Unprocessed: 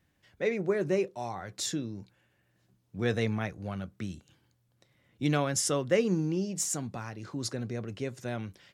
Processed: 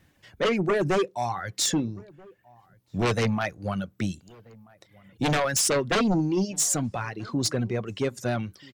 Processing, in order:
reverb reduction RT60 1.5 s
sine wavefolder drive 13 dB, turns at −13 dBFS
slap from a distant wall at 220 metres, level −25 dB
level −6 dB

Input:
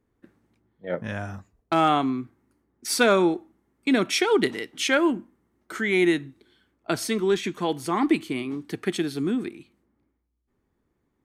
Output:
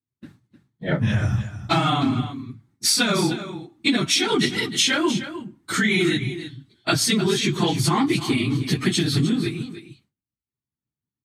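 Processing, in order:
random phases in long frames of 50 ms
high-pass filter 80 Hz
low-shelf EQ 180 Hz +4.5 dB
downward expander −52 dBFS
octave-band graphic EQ 125/500/4,000/8,000 Hz +11/−7/+9/+5 dB
downward compressor 10 to 1, threshold −26 dBFS, peak gain reduction 13.5 dB
single-tap delay 307 ms −12 dB
level +9 dB

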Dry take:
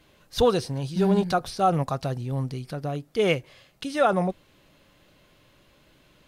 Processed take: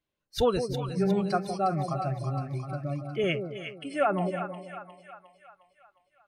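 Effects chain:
noise reduction from a noise print of the clip's start 24 dB
echo with a time of its own for lows and highs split 750 Hz, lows 161 ms, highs 358 ms, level −7.5 dB
0:01.49–0:03.24: multiband upward and downward compressor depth 40%
level −4 dB

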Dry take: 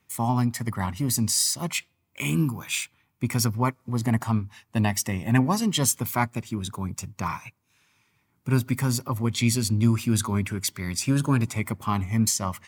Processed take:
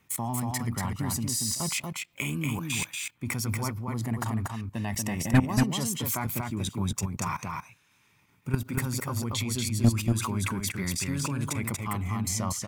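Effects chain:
parametric band 4,700 Hz −2 dB 0.54 octaves
output level in coarse steps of 18 dB
soft clipping −17.5 dBFS, distortion −12 dB
on a send: single-tap delay 236 ms −3.5 dB
on the sum: level +5.5 dB

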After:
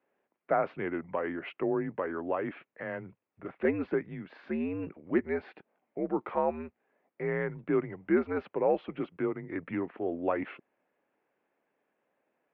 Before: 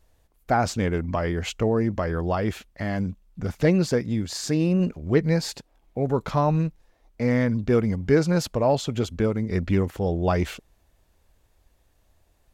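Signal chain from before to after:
single-sideband voice off tune −82 Hz 320–2,600 Hz
level −5 dB

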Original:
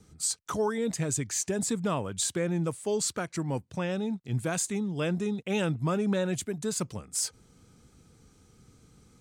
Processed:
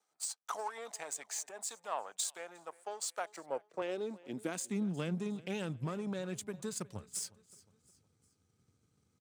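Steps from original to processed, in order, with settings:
low-shelf EQ 120 Hz −7 dB
downward compressor, threshold −30 dBFS, peak gain reduction 6 dB
power curve on the samples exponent 1.4
high-pass filter sweep 760 Hz → 87 Hz, 0:03.10–0:05.82
repeating echo 360 ms, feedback 43%, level −21 dB
0:01.49–0:03.82: multiband upward and downward expander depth 70%
level −2.5 dB

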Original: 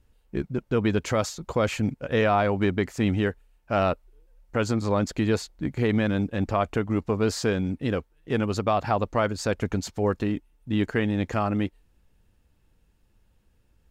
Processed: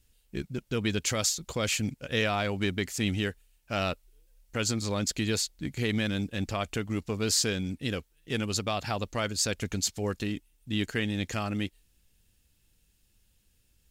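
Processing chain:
drawn EQ curve 160 Hz 0 dB, 1,000 Hz −5 dB, 3,200 Hz +10 dB, 8,600 Hz +15 dB
level −5 dB

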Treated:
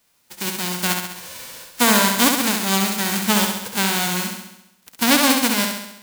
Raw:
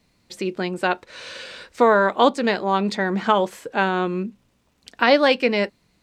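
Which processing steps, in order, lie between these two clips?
spectral envelope flattened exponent 0.1
flutter between parallel walls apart 11.5 metres, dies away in 0.86 s
level −1 dB

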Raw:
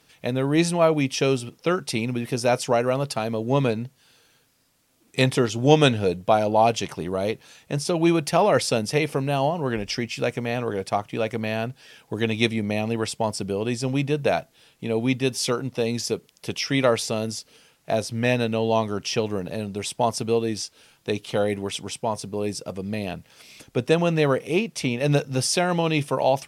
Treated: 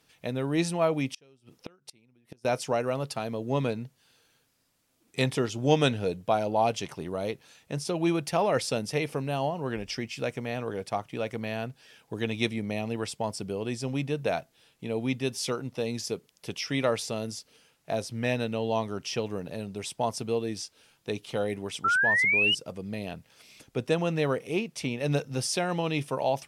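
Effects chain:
0:01.12–0:02.45: gate with flip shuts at −18 dBFS, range −31 dB
0:21.84–0:22.55: sound drawn into the spectrogram rise 1,300–3,000 Hz −17 dBFS
level −6.5 dB

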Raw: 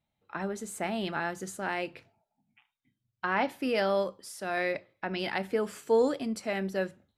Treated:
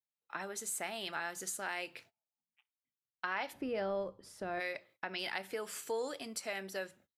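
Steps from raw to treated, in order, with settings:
spectral tilt +3 dB per octave, from 0:03.52 −3 dB per octave, from 0:04.59 +2.5 dB per octave
noise gate −56 dBFS, range −21 dB
downward compressor 2 to 1, threshold −35 dBFS, peak gain reduction 8 dB
dynamic equaliser 220 Hz, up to −6 dB, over −49 dBFS, Q 1.3
level −2.5 dB

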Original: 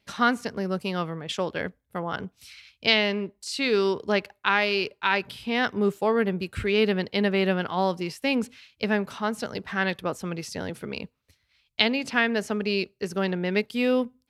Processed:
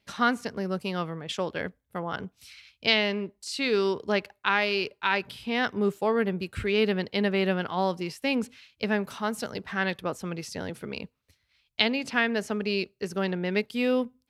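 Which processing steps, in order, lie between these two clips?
0:09.03–0:09.51: high-shelf EQ 9,000 Hz +9.5 dB
level −2 dB

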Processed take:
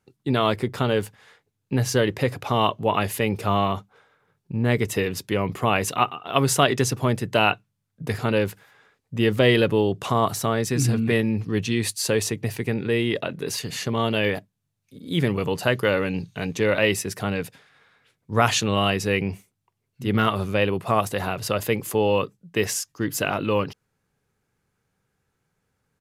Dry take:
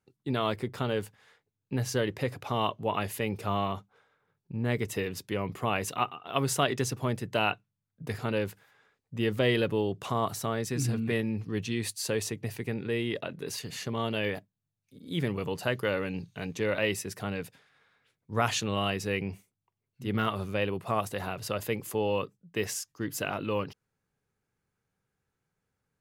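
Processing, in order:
downsampling to 32,000 Hz
level +8 dB

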